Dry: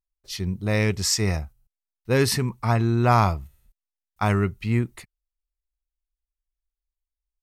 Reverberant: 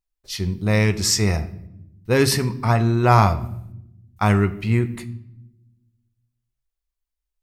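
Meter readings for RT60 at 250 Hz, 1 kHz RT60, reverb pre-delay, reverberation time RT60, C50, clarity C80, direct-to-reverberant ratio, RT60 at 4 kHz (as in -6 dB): 1.4 s, 0.70 s, 10 ms, 0.80 s, 15.5 dB, 18.0 dB, 10.0 dB, 0.60 s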